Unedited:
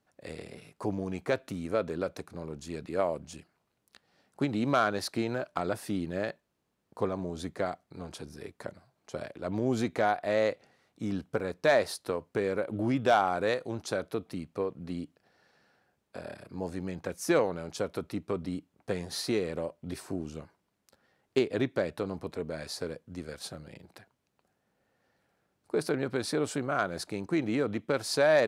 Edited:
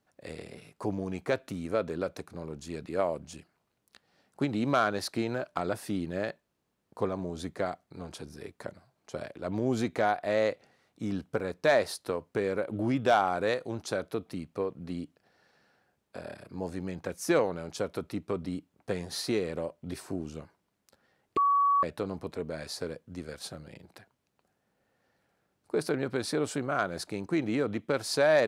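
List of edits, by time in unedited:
21.37–21.83 s: bleep 1.13 kHz -21 dBFS

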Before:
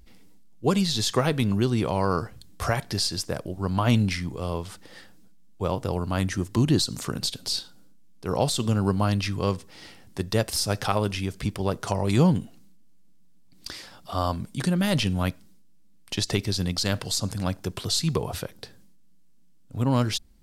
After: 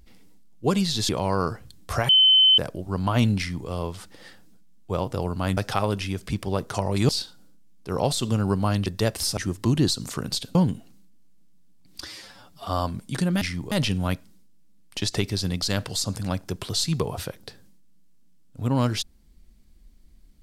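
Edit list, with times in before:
1.09–1.80 s: delete
2.80–3.29 s: bleep 3.06 kHz -12.5 dBFS
4.09–4.39 s: copy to 14.87 s
6.28–7.46 s: swap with 10.70–12.22 s
9.23–10.19 s: delete
13.69–14.12 s: stretch 1.5×

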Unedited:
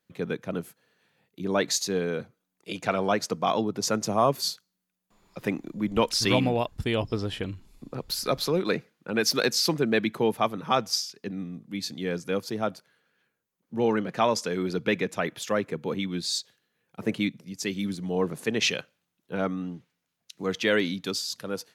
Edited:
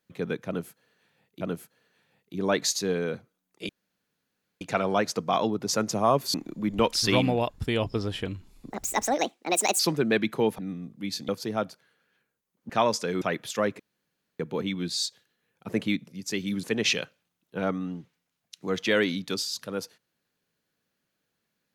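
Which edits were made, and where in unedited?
0.47–1.41 s: loop, 2 plays
2.75 s: insert room tone 0.92 s
4.48–5.52 s: delete
7.88–9.61 s: speed 158%
10.40–11.29 s: delete
11.99–12.34 s: delete
13.75–14.12 s: delete
14.64–15.14 s: delete
15.72 s: insert room tone 0.60 s
17.96–18.40 s: delete

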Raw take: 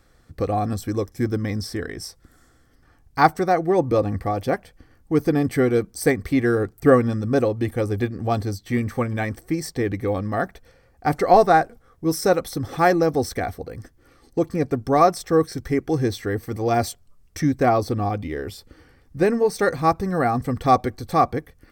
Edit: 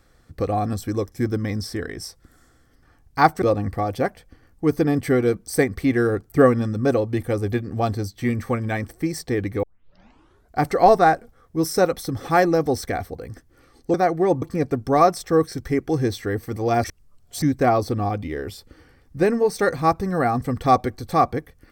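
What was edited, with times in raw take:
3.42–3.90 s: move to 14.42 s
10.11 s: tape start 0.97 s
16.84–17.42 s: reverse

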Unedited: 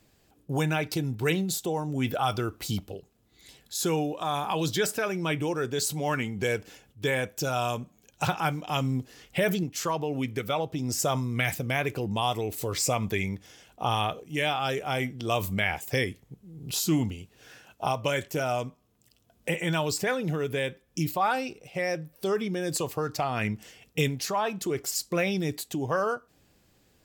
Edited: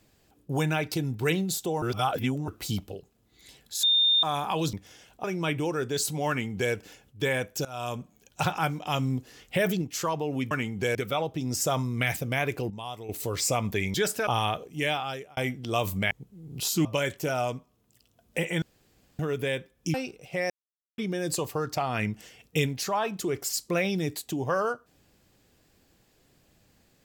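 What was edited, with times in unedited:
1.82–2.48 s: reverse
3.83–4.23 s: bleep 3.63 kHz -18.5 dBFS
4.73–5.06 s: swap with 13.32–13.83 s
6.11–6.55 s: copy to 10.33 s
7.47–7.82 s: fade in, from -21.5 dB
12.08–12.47 s: gain -10.5 dB
14.43–14.93 s: fade out
15.67–16.22 s: delete
16.96–17.96 s: delete
19.73–20.30 s: room tone
21.05–21.36 s: delete
21.92–22.40 s: mute

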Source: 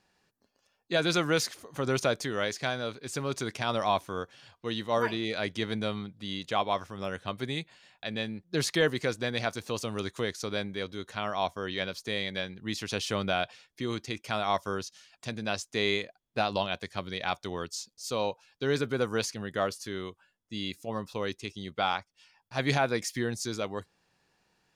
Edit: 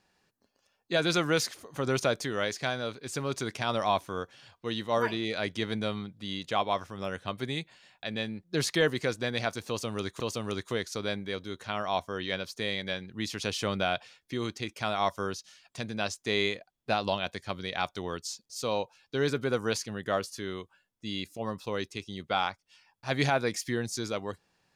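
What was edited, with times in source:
9.68–10.20 s: loop, 2 plays

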